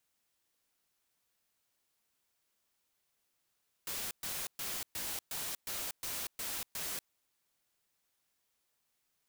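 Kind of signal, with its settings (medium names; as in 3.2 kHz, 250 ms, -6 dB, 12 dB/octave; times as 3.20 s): noise bursts white, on 0.24 s, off 0.12 s, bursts 9, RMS -39 dBFS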